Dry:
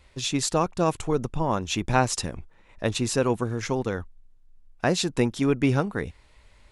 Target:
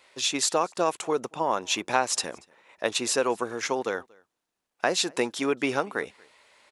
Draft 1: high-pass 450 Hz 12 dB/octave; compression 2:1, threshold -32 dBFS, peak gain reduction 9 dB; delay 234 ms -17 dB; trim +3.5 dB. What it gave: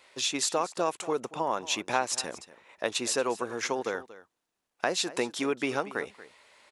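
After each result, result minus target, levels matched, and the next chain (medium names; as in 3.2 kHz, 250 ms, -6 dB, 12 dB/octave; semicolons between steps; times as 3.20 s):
echo-to-direct +10.5 dB; compression: peak gain reduction +4 dB
high-pass 450 Hz 12 dB/octave; compression 2:1, threshold -32 dBFS, peak gain reduction 9 dB; delay 234 ms -27.5 dB; trim +3.5 dB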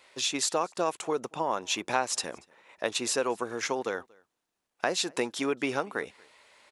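compression: peak gain reduction +4 dB
high-pass 450 Hz 12 dB/octave; compression 2:1, threshold -24.5 dBFS, peak gain reduction 5.5 dB; delay 234 ms -27.5 dB; trim +3.5 dB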